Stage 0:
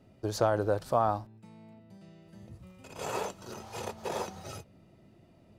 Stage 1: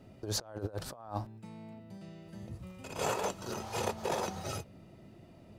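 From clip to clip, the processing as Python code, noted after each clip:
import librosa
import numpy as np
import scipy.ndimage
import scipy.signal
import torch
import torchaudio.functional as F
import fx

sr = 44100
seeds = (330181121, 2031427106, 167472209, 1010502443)

y = fx.over_compress(x, sr, threshold_db=-35.0, ratio=-0.5)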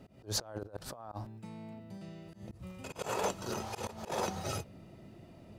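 y = fx.auto_swell(x, sr, attack_ms=143.0)
y = F.gain(torch.from_numpy(y), 1.5).numpy()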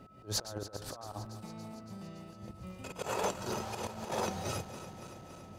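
y = fx.reverse_delay_fb(x, sr, ms=141, feedback_pct=83, wet_db=-13.5)
y = y + 10.0 ** (-58.0 / 20.0) * np.sin(2.0 * np.pi * 1300.0 * np.arange(len(y)) / sr)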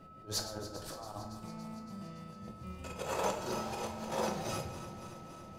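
y = fx.room_shoebox(x, sr, seeds[0], volume_m3=130.0, walls='mixed', distance_m=0.66)
y = F.gain(torch.from_numpy(y), -2.5).numpy()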